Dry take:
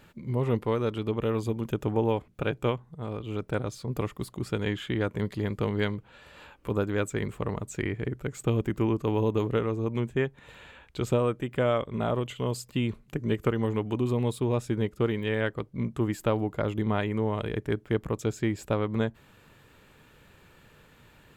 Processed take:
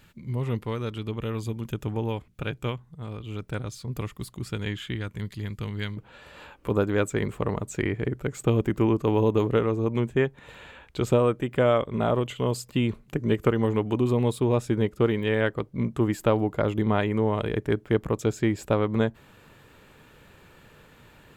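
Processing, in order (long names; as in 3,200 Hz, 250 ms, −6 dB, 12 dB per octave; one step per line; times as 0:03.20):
parametric band 550 Hz −8.5 dB 2.8 octaves, from 0:04.96 −14.5 dB, from 0:05.97 +2 dB
level +2.5 dB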